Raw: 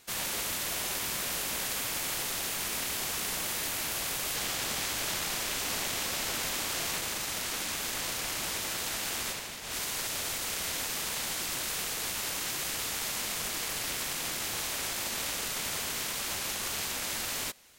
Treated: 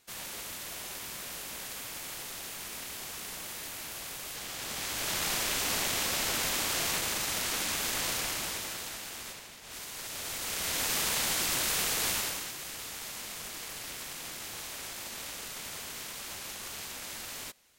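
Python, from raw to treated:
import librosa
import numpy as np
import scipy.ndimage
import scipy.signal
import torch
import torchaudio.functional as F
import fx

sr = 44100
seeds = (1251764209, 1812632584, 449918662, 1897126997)

y = fx.gain(x, sr, db=fx.line((4.46, -7.5), (5.27, 2.0), (8.16, 2.0), (9.09, -8.0), (9.91, -8.0), (10.92, 4.0), (12.14, 4.0), (12.54, -7.0)))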